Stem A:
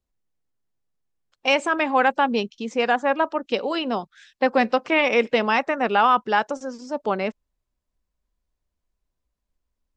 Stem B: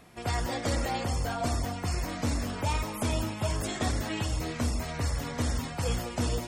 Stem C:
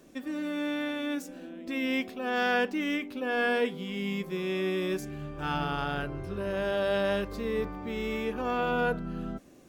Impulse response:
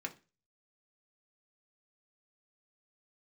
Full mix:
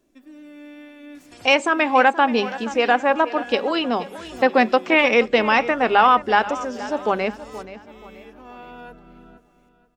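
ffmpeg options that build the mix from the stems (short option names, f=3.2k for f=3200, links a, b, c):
-filter_complex "[0:a]bandreject=f=50:t=h:w=6,bandreject=f=100:t=h:w=6,bandreject=f=150:t=h:w=6,bandreject=f=200:t=h:w=6,volume=2dB,asplit=4[a][b][c][d];[b]volume=-13dB[e];[c]volume=-14.5dB[f];[1:a]equalizer=f=5.5k:t=o:w=2.7:g=11,alimiter=level_in=6.5dB:limit=-24dB:level=0:latency=1,volume=-6.5dB,adelay=1150,volume=-5.5dB[g];[2:a]aecho=1:1:3:0.39,volume=-11.5dB,asplit=2[h][i];[i]volume=-14.5dB[j];[d]apad=whole_len=336479[k];[g][k]sidechaincompress=threshold=-40dB:ratio=4:attack=16:release=217[l];[3:a]atrim=start_sample=2205[m];[e][m]afir=irnorm=-1:irlink=0[n];[f][j]amix=inputs=2:normalize=0,aecho=0:1:477|954|1431|1908|2385:1|0.39|0.152|0.0593|0.0231[o];[a][l][h][n][o]amix=inputs=5:normalize=0"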